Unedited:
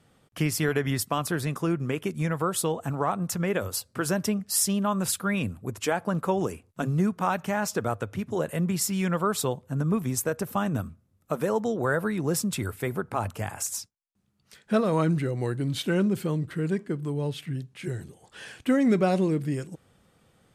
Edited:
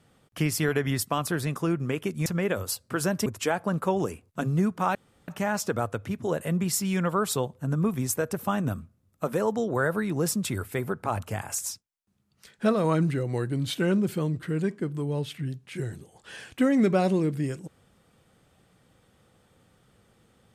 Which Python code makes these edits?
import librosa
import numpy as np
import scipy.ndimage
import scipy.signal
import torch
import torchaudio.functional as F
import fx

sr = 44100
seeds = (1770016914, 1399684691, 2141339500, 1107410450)

y = fx.edit(x, sr, fx.cut(start_s=2.26, length_s=1.05),
    fx.cut(start_s=4.31, length_s=1.36),
    fx.insert_room_tone(at_s=7.36, length_s=0.33), tone=tone)